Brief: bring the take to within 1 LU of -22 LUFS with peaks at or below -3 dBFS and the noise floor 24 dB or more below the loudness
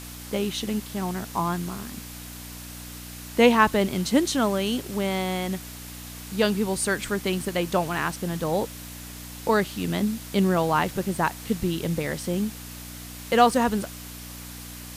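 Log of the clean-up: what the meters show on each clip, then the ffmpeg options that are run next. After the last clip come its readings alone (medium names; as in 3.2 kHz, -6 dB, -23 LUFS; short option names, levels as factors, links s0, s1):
hum 60 Hz; highest harmonic 300 Hz; hum level -41 dBFS; noise floor -40 dBFS; noise floor target -49 dBFS; loudness -25.0 LUFS; peak level -5.0 dBFS; loudness target -22.0 LUFS
-> -af "bandreject=f=60:t=h:w=4,bandreject=f=120:t=h:w=4,bandreject=f=180:t=h:w=4,bandreject=f=240:t=h:w=4,bandreject=f=300:t=h:w=4"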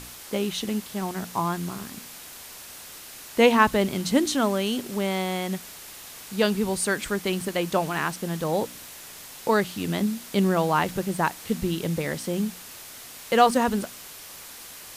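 hum not found; noise floor -43 dBFS; noise floor target -50 dBFS
-> -af "afftdn=nr=7:nf=-43"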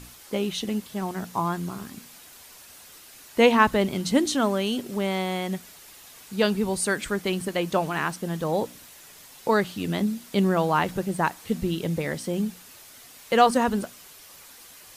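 noise floor -48 dBFS; noise floor target -50 dBFS
-> -af "afftdn=nr=6:nf=-48"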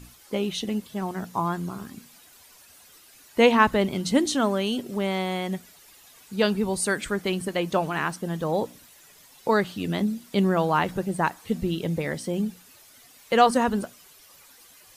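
noise floor -53 dBFS; loudness -25.5 LUFS; peak level -4.5 dBFS; loudness target -22.0 LUFS
-> -af "volume=1.5,alimiter=limit=0.708:level=0:latency=1"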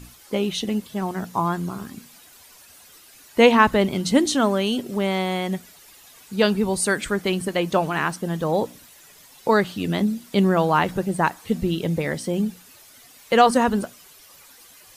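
loudness -22.0 LUFS; peak level -3.0 dBFS; noise floor -50 dBFS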